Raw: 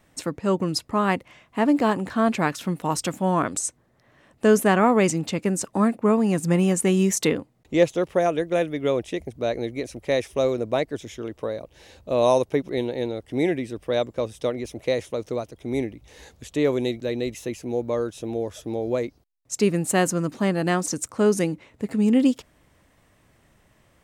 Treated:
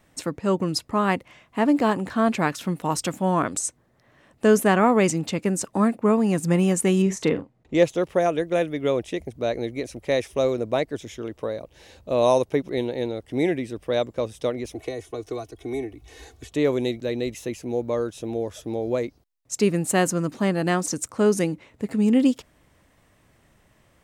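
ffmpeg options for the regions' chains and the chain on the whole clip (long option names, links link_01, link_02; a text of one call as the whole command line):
ffmpeg -i in.wav -filter_complex "[0:a]asettb=1/sr,asplit=3[link_01][link_02][link_03];[link_01]atrim=end=7.024[link_04];[link_02]atrim=start=7.02:end=7.75,asetpts=PTS-STARTPTS,afade=type=in:duration=0.004:curve=qsin,afade=type=out:start_time=0.726:duration=0.004:curve=qsin,lowpass=9600,highshelf=frequency=3300:gain=-11,asplit=2[link_05][link_06];[link_06]adelay=43,volume=-12dB[link_07];[link_05][link_07]amix=inputs=2:normalize=0,atrim=end_sample=32193[link_08];[link_03]atrim=start=7.746[link_09];[link_04][link_08]acrossfade=duration=0.004:curve1=hsin:curve2=qsin[link_10];[link_10][link_09]acrossfade=duration=0.004:curve1=qsin:curve2=hsin,asettb=1/sr,asplit=3[link_11][link_12][link_13];[link_11]atrim=end=14.744[link_14];[link_12]atrim=start=14.74:end=16.52,asetpts=PTS-STARTPTS,afade=type=in:duration=0.004:curve=qsin,afade=type=out:start_time=1.776:duration=0.004:curve=qsin,acrossover=split=230|520|1500|6000[link_15][link_16][link_17][link_18][link_19];[link_15]acompressor=threshold=-40dB:ratio=3[link_20];[link_16]acompressor=threshold=-38dB:ratio=3[link_21];[link_17]acompressor=threshold=-37dB:ratio=3[link_22];[link_18]acompressor=threshold=-51dB:ratio=3[link_23];[link_19]acompressor=threshold=-56dB:ratio=3[link_24];[link_20][link_21][link_22][link_23][link_24]amix=inputs=5:normalize=0,aecho=1:1:2.7:0.88,atrim=end_sample=78498[link_25];[link_13]atrim=start=16.516[link_26];[link_14][link_25]acrossfade=duration=0.004:curve1=hsin:curve2=qsin[link_27];[link_27][link_26]acrossfade=duration=0.004:curve1=qsin:curve2=hsin" out.wav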